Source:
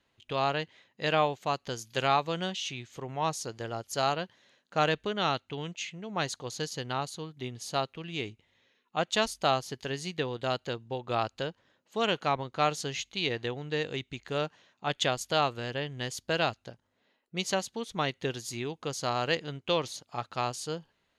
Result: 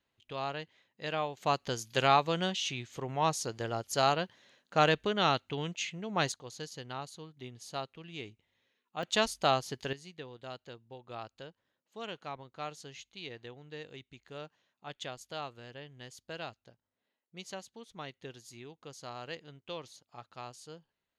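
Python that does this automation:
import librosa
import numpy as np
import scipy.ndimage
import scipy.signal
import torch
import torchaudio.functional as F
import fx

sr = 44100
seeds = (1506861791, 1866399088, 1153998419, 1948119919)

y = fx.gain(x, sr, db=fx.steps((0.0, -8.0), (1.37, 1.0), (6.32, -8.0), (9.03, -1.0), (9.93, -13.5)))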